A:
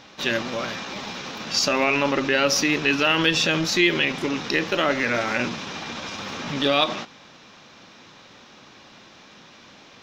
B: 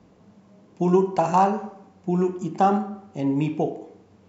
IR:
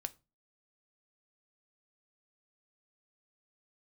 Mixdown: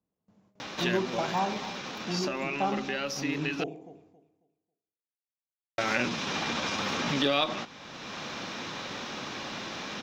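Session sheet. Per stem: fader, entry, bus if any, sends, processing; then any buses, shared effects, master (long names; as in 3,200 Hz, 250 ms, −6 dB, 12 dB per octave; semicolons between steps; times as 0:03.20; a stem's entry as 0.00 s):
−5.0 dB, 0.60 s, muted 0:03.64–0:05.78, no send, no echo send, multiband upward and downward compressor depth 70%; automatic ducking −7 dB, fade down 1.80 s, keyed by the second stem
−11.0 dB, 0.00 s, no send, echo send −15 dB, de-essing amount 65%; noise gate with hold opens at −43 dBFS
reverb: not used
echo: repeating echo 272 ms, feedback 24%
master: no processing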